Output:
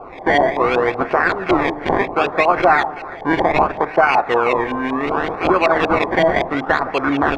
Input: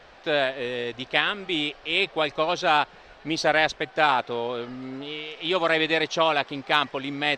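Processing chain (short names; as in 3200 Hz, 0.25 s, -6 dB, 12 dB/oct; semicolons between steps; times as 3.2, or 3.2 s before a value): decimation with a swept rate 23×, swing 100% 0.68 Hz; compressor, threshold -27 dBFS, peak gain reduction 12 dB; low shelf 140 Hz -10 dB; notch 3000 Hz, Q 11; echo with dull and thin repeats by turns 0.164 s, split 870 Hz, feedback 51%, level -13 dB; reverb RT60 0.40 s, pre-delay 3 ms, DRR 9.5 dB; LFO low-pass saw up 5.3 Hz 800–3000 Hz; 4.28–5.07 bell 4600 Hz -6.5 dB 0.41 oct; maximiser +15 dB; gain -1 dB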